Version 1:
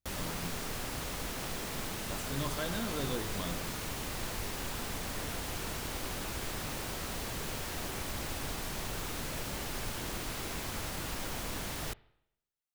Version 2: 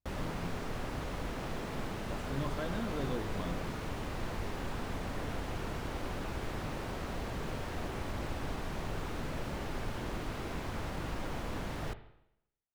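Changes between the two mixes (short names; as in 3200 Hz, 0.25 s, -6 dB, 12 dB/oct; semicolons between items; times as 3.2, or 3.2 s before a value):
background: send +11.5 dB; master: add LPF 1300 Hz 6 dB/oct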